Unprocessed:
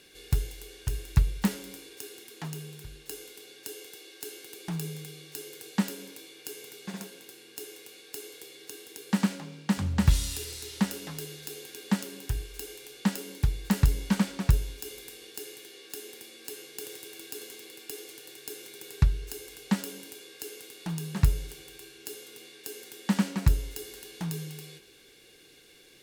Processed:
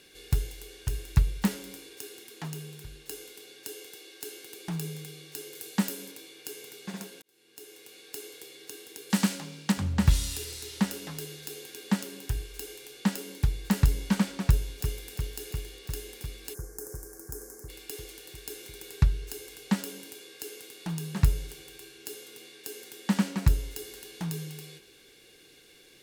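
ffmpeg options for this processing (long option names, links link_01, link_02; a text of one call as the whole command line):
ffmpeg -i in.wav -filter_complex "[0:a]asettb=1/sr,asplit=3[link_01][link_02][link_03];[link_01]atrim=end=5.554[link_04];[link_02]atrim=start=5.55:end=6.12,asetpts=PTS-STARTPTS,afade=type=in:duration=0.004:curve=qsin,afade=type=out:start_time=0.566:duration=0.004:curve=qsin,highshelf=frequency=8200:gain=7.5[link_05];[link_03]atrim=start=6.116[link_06];[link_04][link_05]acrossfade=duration=0.004:curve1=hsin:curve2=qsin[link_07];[link_07][link_06]acrossfade=duration=0.004:curve1=qsin:curve2=hsin,asettb=1/sr,asplit=3[link_08][link_09][link_10];[link_08]atrim=end=9.104[link_11];[link_09]atrim=start=9.1:end=9.72,asetpts=PTS-STARTPTS,afade=type=in:duration=0.004:curve=qsin,afade=type=out:start_time=0.616:duration=0.004:curve=qsin,highshelf=frequency=3100:gain=9[link_12];[link_10]atrim=start=9.716[link_13];[link_11][link_12]acrossfade=duration=0.004:curve1=hsin:curve2=qsin[link_14];[link_14][link_13]acrossfade=duration=0.004:curve1=qsin:curve2=hsin,asplit=2[link_15][link_16];[link_16]afade=type=in:start_time=14.45:duration=0.01,afade=type=out:start_time=15.08:duration=0.01,aecho=0:1:350|700|1050|1400|1750|2100|2450|2800|3150|3500|3850|4200:0.354813|0.283851|0.227081|0.181664|0.145332|0.116265|0.0930122|0.0744098|0.0595278|0.0476222|0.0380978|0.0304782[link_17];[link_15][link_17]amix=inputs=2:normalize=0,asplit=3[link_18][link_19][link_20];[link_18]afade=type=out:start_time=16.53:duration=0.02[link_21];[link_19]asuperstop=centerf=3100:order=8:qfactor=0.77,afade=type=in:start_time=16.53:duration=0.02,afade=type=out:start_time=17.68:duration=0.02[link_22];[link_20]afade=type=in:start_time=17.68:duration=0.02[link_23];[link_21][link_22][link_23]amix=inputs=3:normalize=0,asplit=2[link_24][link_25];[link_24]atrim=end=7.22,asetpts=PTS-STARTPTS,afade=type=out:start_time=7.216:duration=0.004:curve=hsin[link_26];[link_25]atrim=start=7.22,asetpts=PTS-STARTPTS,afade=type=in:duration=0.82[link_27];[link_26][link_27]concat=n=2:v=0:a=1" out.wav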